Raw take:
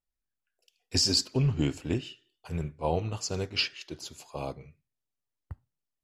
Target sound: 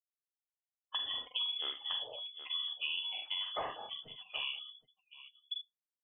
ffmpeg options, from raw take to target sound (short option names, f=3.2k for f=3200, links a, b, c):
-af "agate=range=-33dB:threshold=-53dB:ratio=3:detection=peak,afftdn=nr=34:nf=-46,equalizer=f=280:t=o:w=0.92:g=-14.5,lowpass=f=3k:t=q:w=0.5098,lowpass=f=3k:t=q:w=0.6013,lowpass=f=3k:t=q:w=0.9,lowpass=f=3k:t=q:w=2.563,afreqshift=-3500,aecho=1:1:44|73|771:0.668|0.355|0.112,acompressor=threshold=-37dB:ratio=6,volume=2dB"